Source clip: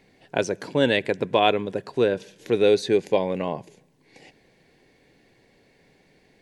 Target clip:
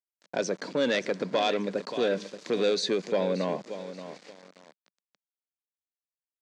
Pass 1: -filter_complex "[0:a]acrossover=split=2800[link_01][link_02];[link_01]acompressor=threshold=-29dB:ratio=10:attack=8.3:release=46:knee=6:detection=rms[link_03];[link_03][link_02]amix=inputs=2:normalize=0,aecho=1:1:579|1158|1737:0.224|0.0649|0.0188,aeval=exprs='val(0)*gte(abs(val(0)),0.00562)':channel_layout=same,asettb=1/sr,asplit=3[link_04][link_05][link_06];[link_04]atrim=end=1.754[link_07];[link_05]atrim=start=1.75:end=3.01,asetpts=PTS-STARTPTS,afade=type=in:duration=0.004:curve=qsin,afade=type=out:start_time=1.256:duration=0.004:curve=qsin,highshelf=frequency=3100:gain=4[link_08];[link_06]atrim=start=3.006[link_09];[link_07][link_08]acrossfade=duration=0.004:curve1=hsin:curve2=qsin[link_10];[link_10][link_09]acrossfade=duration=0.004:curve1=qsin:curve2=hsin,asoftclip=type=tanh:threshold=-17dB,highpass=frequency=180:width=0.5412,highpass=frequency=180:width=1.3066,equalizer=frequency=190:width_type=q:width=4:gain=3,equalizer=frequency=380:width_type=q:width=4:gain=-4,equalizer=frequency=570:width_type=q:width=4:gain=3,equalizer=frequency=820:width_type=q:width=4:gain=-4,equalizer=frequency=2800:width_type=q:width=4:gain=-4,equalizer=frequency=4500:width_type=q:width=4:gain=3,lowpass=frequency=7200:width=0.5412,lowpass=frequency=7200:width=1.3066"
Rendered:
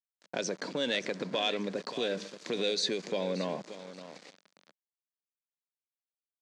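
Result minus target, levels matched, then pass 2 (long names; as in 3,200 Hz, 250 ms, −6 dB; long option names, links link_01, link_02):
downward compressor: peak gain reduction +9 dB
-filter_complex "[0:a]acrossover=split=2800[link_01][link_02];[link_01]acompressor=threshold=-19dB:ratio=10:attack=8.3:release=46:knee=6:detection=rms[link_03];[link_03][link_02]amix=inputs=2:normalize=0,aecho=1:1:579|1158|1737:0.224|0.0649|0.0188,aeval=exprs='val(0)*gte(abs(val(0)),0.00562)':channel_layout=same,asettb=1/sr,asplit=3[link_04][link_05][link_06];[link_04]atrim=end=1.754[link_07];[link_05]atrim=start=1.75:end=3.01,asetpts=PTS-STARTPTS,afade=type=in:duration=0.004:curve=qsin,afade=type=out:start_time=1.256:duration=0.004:curve=qsin,highshelf=frequency=3100:gain=4[link_08];[link_06]atrim=start=3.006[link_09];[link_07][link_08]acrossfade=duration=0.004:curve1=hsin:curve2=qsin[link_10];[link_10][link_09]acrossfade=duration=0.004:curve1=qsin:curve2=hsin,asoftclip=type=tanh:threshold=-17dB,highpass=frequency=180:width=0.5412,highpass=frequency=180:width=1.3066,equalizer=frequency=190:width_type=q:width=4:gain=3,equalizer=frequency=380:width_type=q:width=4:gain=-4,equalizer=frequency=570:width_type=q:width=4:gain=3,equalizer=frequency=820:width_type=q:width=4:gain=-4,equalizer=frequency=2800:width_type=q:width=4:gain=-4,equalizer=frequency=4500:width_type=q:width=4:gain=3,lowpass=frequency=7200:width=0.5412,lowpass=frequency=7200:width=1.3066"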